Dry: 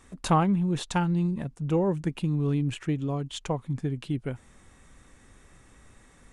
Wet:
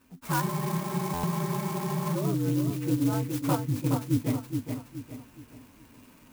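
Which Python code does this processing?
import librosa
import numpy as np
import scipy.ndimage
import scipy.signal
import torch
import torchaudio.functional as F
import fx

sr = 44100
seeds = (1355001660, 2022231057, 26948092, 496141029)

p1 = fx.partial_stretch(x, sr, pct=119)
p2 = scipy.signal.sosfilt(scipy.signal.butter(2, 52.0, 'highpass', fs=sr, output='sos'), p1)
p3 = fx.high_shelf(p2, sr, hz=6300.0, db=-5.0)
p4 = fx.level_steps(p3, sr, step_db=17)
p5 = p3 + (p4 * librosa.db_to_amplitude(-2.0))
p6 = fx.graphic_eq_15(p5, sr, hz=(250, 1000, 2500, 6300), db=(12, 9, 8, 6))
p7 = fx.rider(p6, sr, range_db=10, speed_s=0.5)
p8 = p7 + fx.echo_feedback(p7, sr, ms=420, feedback_pct=38, wet_db=-5, dry=0)
p9 = fx.spec_freeze(p8, sr, seeds[0], at_s=0.44, hold_s=1.71)
p10 = fx.buffer_glitch(p9, sr, at_s=(1.13,), block=512, repeats=8)
p11 = fx.clock_jitter(p10, sr, seeds[1], jitter_ms=0.068)
y = p11 * librosa.db_to_amplitude(-6.5)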